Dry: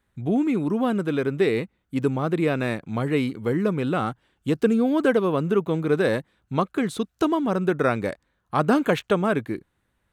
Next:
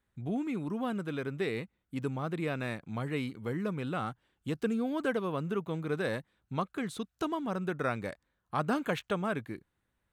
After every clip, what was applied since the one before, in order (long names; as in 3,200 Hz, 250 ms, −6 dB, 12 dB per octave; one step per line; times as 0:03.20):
dynamic equaliser 370 Hz, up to −5 dB, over −34 dBFS, Q 0.93
level −8 dB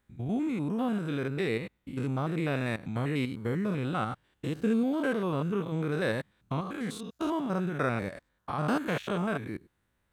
spectrum averaged block by block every 100 ms
level +5.5 dB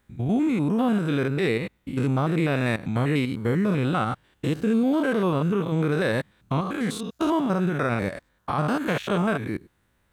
brickwall limiter −22.5 dBFS, peak gain reduction 6.5 dB
level +8 dB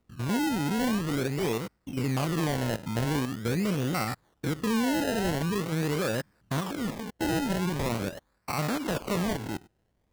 sample-and-hold swept by an LFO 26×, swing 100% 0.44 Hz
level −5 dB